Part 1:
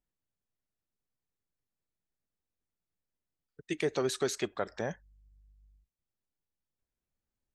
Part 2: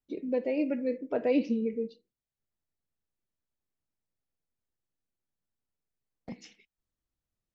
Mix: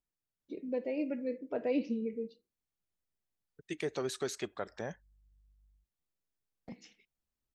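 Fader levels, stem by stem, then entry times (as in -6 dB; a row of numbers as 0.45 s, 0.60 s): -5.0 dB, -5.5 dB; 0.00 s, 0.40 s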